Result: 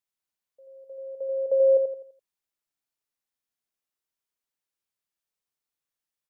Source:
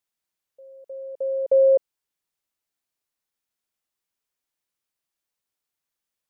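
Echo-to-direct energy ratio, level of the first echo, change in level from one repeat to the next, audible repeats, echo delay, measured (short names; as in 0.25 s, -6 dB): -4.5 dB, -5.0 dB, -8.5 dB, 4, 84 ms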